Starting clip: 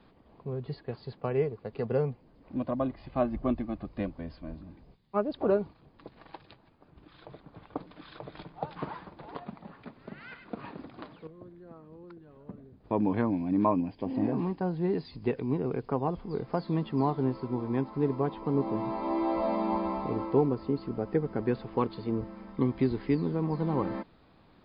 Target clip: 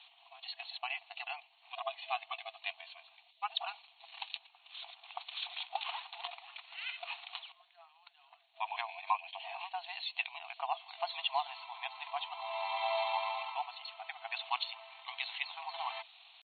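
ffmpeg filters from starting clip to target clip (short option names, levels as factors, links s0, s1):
-af "atempo=1.5,highshelf=f=2100:t=q:w=3:g=10,afftfilt=real='re*between(b*sr/4096,660,4400)':imag='im*between(b*sr/4096,660,4400)':win_size=4096:overlap=0.75,volume=1.19"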